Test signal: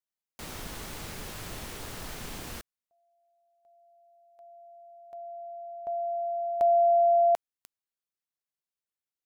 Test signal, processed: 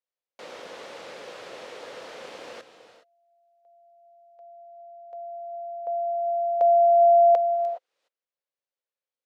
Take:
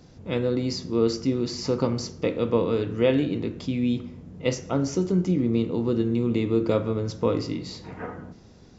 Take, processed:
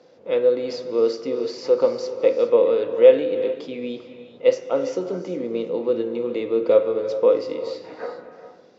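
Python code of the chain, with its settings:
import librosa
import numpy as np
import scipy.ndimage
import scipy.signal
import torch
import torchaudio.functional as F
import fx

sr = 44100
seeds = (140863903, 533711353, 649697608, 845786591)

y = fx.bandpass_edges(x, sr, low_hz=390.0, high_hz=4300.0)
y = fx.peak_eq(y, sr, hz=520.0, db=13.0, octaves=0.42)
y = fx.rev_gated(y, sr, seeds[0], gate_ms=440, shape='rising', drr_db=10.5)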